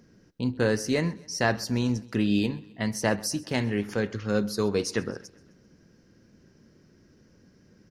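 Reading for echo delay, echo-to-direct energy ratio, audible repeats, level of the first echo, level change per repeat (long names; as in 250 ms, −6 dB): 130 ms, −21.5 dB, 3, −23.0 dB, −5.0 dB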